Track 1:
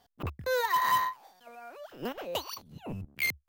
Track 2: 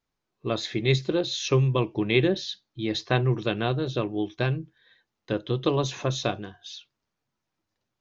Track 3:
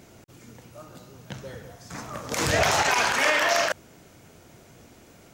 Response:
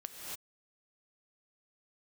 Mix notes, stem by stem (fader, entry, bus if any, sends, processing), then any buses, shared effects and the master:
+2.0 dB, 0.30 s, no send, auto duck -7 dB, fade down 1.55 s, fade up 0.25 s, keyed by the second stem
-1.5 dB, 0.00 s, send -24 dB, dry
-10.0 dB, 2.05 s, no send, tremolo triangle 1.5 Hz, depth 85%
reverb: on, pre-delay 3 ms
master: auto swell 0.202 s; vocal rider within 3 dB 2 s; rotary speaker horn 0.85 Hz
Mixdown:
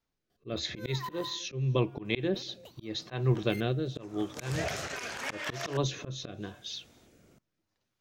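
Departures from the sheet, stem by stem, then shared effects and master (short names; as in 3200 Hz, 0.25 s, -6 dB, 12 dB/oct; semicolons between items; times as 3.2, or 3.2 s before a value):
stem 1 +2.0 dB -> -6.0 dB; stem 3: missing tremolo triangle 1.5 Hz, depth 85%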